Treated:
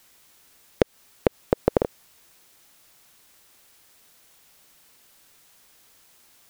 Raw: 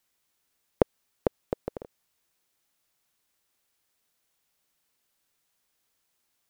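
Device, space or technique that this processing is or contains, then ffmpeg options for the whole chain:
loud club master: -af "acompressor=threshold=0.0631:ratio=2.5,asoftclip=type=hard:threshold=0.282,alimiter=level_in=10:limit=0.891:release=50:level=0:latency=1,volume=0.891"

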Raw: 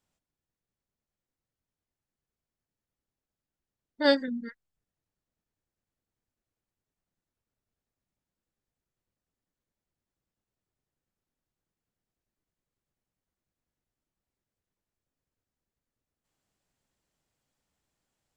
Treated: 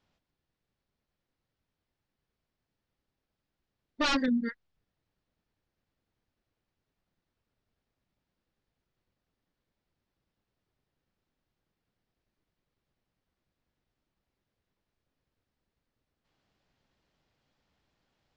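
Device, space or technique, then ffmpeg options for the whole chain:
synthesiser wavefolder: -af "aeval=exprs='0.0447*(abs(mod(val(0)/0.0447+3,4)-2)-1)':c=same,lowpass=f=5000:w=0.5412,lowpass=f=5000:w=1.3066,volume=2.11"

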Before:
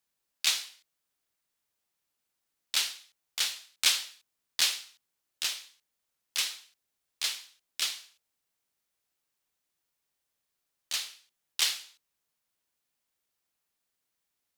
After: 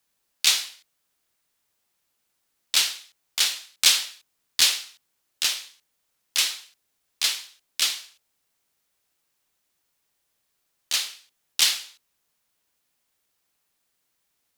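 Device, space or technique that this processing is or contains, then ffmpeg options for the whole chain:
one-band saturation: -filter_complex "[0:a]acrossover=split=380|3000[s0][s1][s2];[s1]asoftclip=type=tanh:threshold=0.0316[s3];[s0][s3][s2]amix=inputs=3:normalize=0,volume=2.51"

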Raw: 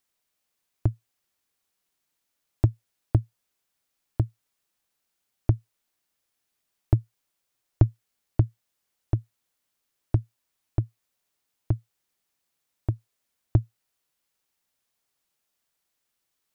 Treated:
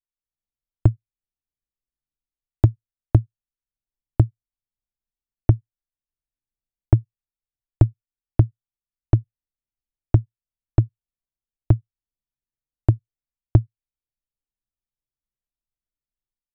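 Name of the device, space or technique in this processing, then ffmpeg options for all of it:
voice memo with heavy noise removal: -af "anlmdn=0.00631,dynaudnorm=f=210:g=3:m=3.98,volume=0.891"

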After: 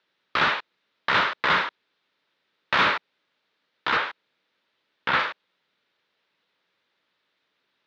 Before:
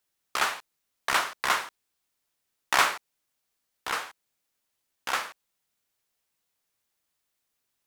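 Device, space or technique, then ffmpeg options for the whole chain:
overdrive pedal into a guitar cabinet: -filter_complex "[0:a]asettb=1/sr,asplit=3[s0][s1][s2];[s0]atrim=end=3.974[s3];[s1]atrim=start=3.97:end=5.19,asetpts=PTS-STARTPTS,afade=t=in:d=0.004:c=qsin,afade=t=out:st=1.216:d=0.004:c=qsin,acrossover=split=4200[s4][s5];[s5]acompressor=threshold=0.00398:ratio=4:attack=1:release=60[s6];[s4][s6]amix=inputs=2:normalize=0[s7];[s2]atrim=start=5.186[s8];[s3][s7]acrossfade=d=0.004:c1=hsin:c2=qsin[s9];[s9][s8]acrossfade=d=0.004:c1=qsin:c2=hsin,asplit=2[s10][s11];[s11]highpass=f=720:p=1,volume=17.8,asoftclip=type=tanh:threshold=0.531[s12];[s10][s12]amix=inputs=2:normalize=0,lowpass=f=1100:p=1,volume=0.501,highpass=93,equalizer=f=180:t=q:w=4:g=3,equalizer=f=740:t=q:w=4:g=-9,equalizer=f=1100:t=q:w=4:g=-4,equalizer=f=3700:t=q:w=4:g=5,lowpass=f=4500:w=0.5412,lowpass=f=4500:w=1.3066"

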